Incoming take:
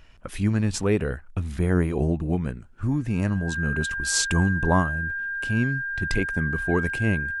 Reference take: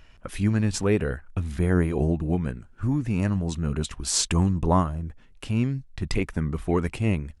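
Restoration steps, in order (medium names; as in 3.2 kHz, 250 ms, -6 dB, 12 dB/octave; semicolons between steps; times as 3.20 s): band-stop 1.6 kHz, Q 30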